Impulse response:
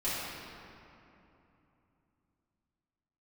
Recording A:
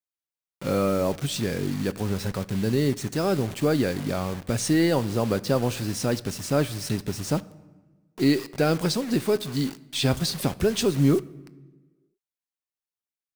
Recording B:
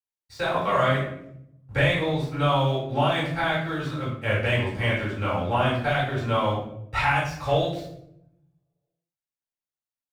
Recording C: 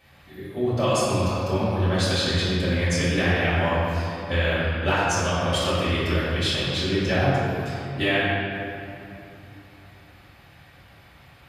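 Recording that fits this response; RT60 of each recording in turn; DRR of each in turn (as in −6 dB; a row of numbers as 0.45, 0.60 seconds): C; 1.3, 0.75, 3.0 seconds; 15.0, −8.5, −12.5 decibels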